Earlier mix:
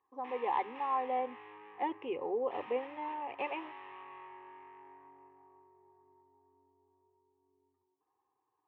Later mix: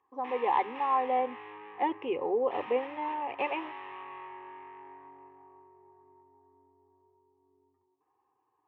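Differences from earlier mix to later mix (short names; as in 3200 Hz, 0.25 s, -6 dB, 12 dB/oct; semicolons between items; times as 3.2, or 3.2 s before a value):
speech +5.5 dB; background +6.0 dB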